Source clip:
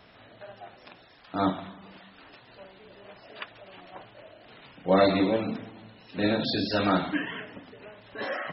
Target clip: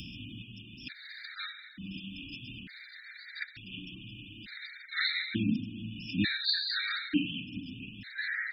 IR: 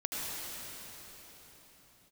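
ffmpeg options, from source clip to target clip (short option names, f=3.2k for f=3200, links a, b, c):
-af "acompressor=mode=upward:threshold=-33dB:ratio=2.5,asuperstop=centerf=700:order=12:qfactor=0.53,afftfilt=real='re*gt(sin(2*PI*0.56*pts/sr)*(1-2*mod(floor(b*sr/1024/1200),2)),0)':imag='im*gt(sin(2*PI*0.56*pts/sr)*(1-2*mod(floor(b*sr/1024/1200),2)),0)':win_size=1024:overlap=0.75,volume=4.5dB"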